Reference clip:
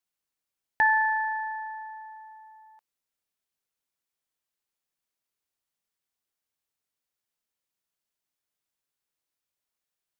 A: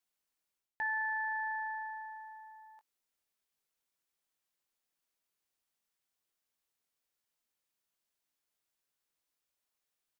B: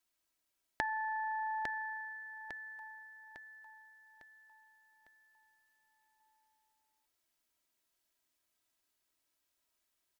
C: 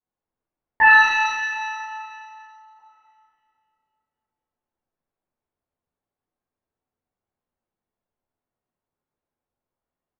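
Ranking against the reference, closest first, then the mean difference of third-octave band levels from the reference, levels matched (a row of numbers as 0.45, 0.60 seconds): A, B, C; 1.0, 3.0, 8.0 decibels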